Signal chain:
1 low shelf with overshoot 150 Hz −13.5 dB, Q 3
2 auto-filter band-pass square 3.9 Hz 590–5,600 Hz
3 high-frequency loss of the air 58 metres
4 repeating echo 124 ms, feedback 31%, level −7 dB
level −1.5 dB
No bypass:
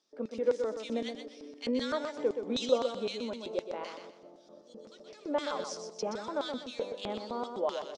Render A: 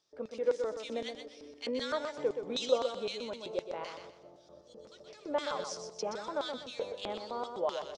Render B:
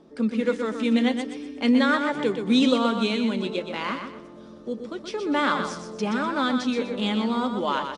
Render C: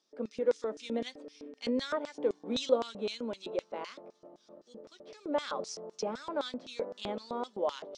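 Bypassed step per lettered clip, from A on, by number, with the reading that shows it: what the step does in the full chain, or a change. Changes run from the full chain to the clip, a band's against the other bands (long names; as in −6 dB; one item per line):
1, 250 Hz band −6.0 dB
2, 8 kHz band −9.5 dB
4, change in momentary loudness spread +3 LU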